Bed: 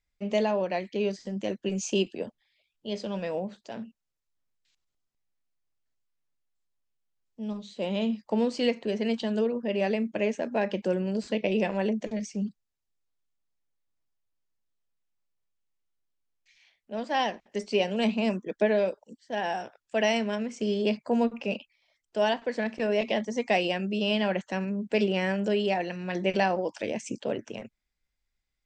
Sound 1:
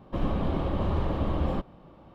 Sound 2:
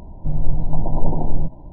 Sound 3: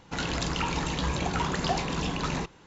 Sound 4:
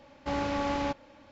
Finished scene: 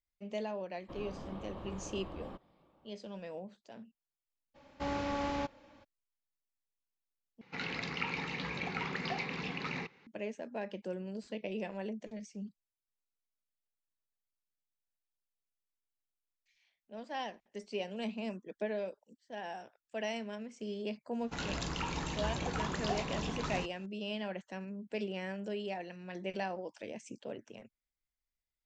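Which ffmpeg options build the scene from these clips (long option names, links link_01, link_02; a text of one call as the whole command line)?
ffmpeg -i bed.wav -i cue0.wav -i cue1.wav -i cue2.wav -i cue3.wav -filter_complex "[3:a]asplit=2[link_01][link_02];[0:a]volume=-12.5dB[link_03];[1:a]lowshelf=frequency=190:gain=-8.5[link_04];[link_01]highpass=200,equalizer=frequency=320:width_type=q:width=4:gain=-9,equalizer=frequency=630:width_type=q:width=4:gain=-10,equalizer=frequency=1000:width_type=q:width=4:gain=-7,equalizer=frequency=1500:width_type=q:width=4:gain=-4,equalizer=frequency=2200:width_type=q:width=4:gain=9,equalizer=frequency=3300:width_type=q:width=4:gain=-7,lowpass=frequency=4400:width=0.5412,lowpass=frequency=4400:width=1.3066[link_05];[link_03]asplit=2[link_06][link_07];[link_06]atrim=end=7.414[link_08];[link_05]atrim=end=2.66,asetpts=PTS-STARTPTS,volume=-5dB[link_09];[link_07]atrim=start=10.066[link_10];[link_04]atrim=end=2.14,asetpts=PTS-STARTPTS,volume=-14dB,afade=type=in:duration=0.004:curve=hsin,afade=type=out:start_time=2.136:duration=0.004:curve=hsin,adelay=760[link_11];[4:a]atrim=end=1.31,asetpts=PTS-STARTPTS,volume=-5dB,afade=type=in:duration=0.02,afade=type=out:start_time=1.29:duration=0.02,adelay=4540[link_12];[link_02]atrim=end=2.66,asetpts=PTS-STARTPTS,volume=-8dB,afade=type=in:duration=0.004:curve=hsin,afade=type=out:start_time=2.656:duration=0.004:curve=hsin,adelay=21200[link_13];[link_08][link_09]acrossfade=duration=0.004:curve1=hsin:curve2=hsin[link_14];[link_14][link_10]acrossfade=duration=0.004:curve1=hsin:curve2=hsin[link_15];[link_15][link_11][link_12][link_13]amix=inputs=4:normalize=0" out.wav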